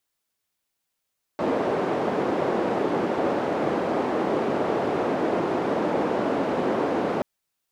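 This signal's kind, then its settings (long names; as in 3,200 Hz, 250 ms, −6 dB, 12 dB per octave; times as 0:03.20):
band-limited noise 290–480 Hz, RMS −24.5 dBFS 5.83 s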